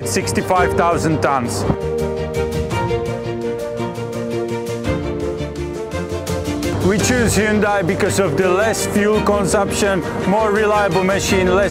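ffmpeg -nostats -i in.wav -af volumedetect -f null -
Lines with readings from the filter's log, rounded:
mean_volume: -17.4 dB
max_volume: -3.0 dB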